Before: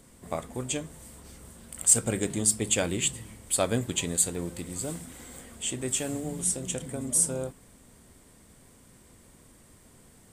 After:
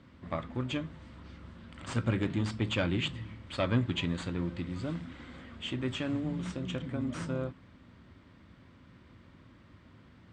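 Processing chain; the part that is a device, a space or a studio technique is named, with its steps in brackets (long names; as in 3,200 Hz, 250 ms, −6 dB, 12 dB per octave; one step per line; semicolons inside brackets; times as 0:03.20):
guitar amplifier (tube saturation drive 18 dB, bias 0.35; bass and treble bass +8 dB, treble −7 dB; loudspeaker in its box 100–4,400 Hz, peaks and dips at 140 Hz −8 dB, 210 Hz −6 dB, 440 Hz −10 dB, 740 Hz −7 dB, 1,300 Hz +3 dB)
level +2 dB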